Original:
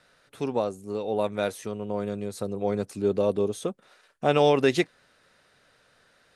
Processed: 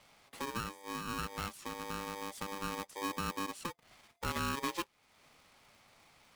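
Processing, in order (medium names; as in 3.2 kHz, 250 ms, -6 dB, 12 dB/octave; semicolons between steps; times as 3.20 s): compression 2:1, threshold -43 dBFS, peak gain reduction 15 dB; polarity switched at an audio rate 690 Hz; trim -1.5 dB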